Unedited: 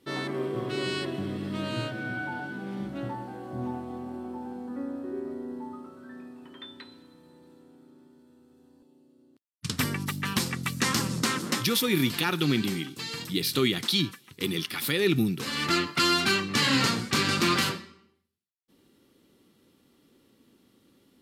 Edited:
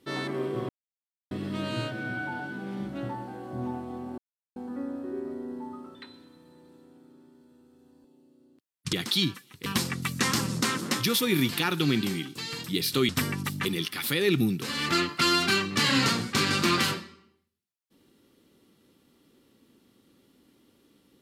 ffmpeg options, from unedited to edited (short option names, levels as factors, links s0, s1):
-filter_complex "[0:a]asplit=10[s0][s1][s2][s3][s4][s5][s6][s7][s8][s9];[s0]atrim=end=0.69,asetpts=PTS-STARTPTS,afade=t=out:st=0.686:d=0.004:c=hsin[s10];[s1]atrim=start=0.69:end=1.31,asetpts=PTS-STARTPTS,volume=0[s11];[s2]atrim=start=1.31:end=4.18,asetpts=PTS-STARTPTS,afade=t=in:d=0.004:c=hsin,afade=t=out:st=2.866:d=0.004:c=hsin[s12];[s3]atrim=start=4.18:end=4.56,asetpts=PTS-STARTPTS,volume=0[s13];[s4]atrim=start=4.56:end=5.952,asetpts=PTS-STARTPTS,afade=t=in:d=0.004:c=hsin[s14];[s5]atrim=start=6.728:end=9.712[s15];[s6]atrim=start=13.698:end=14.432[s16];[s7]atrim=start=10.268:end=13.702[s17];[s8]atrim=start=9.708:end=10.272[s18];[s9]atrim=start=14.428[s19];[s10][s11][s12][s13][s14]concat=n=5:v=0:a=1[s20];[s20][s15]acrossfade=d=0.004:c1=hsin:c2=hsin[s21];[s21][s16]acrossfade=d=0.004:c1=hsin:c2=hsin[s22];[s22][s17]acrossfade=d=0.004:c1=hsin:c2=hsin[s23];[s23][s18]acrossfade=d=0.004:c1=hsin:c2=hsin[s24];[s24][s19]acrossfade=d=0.004:c1=hsin:c2=hsin"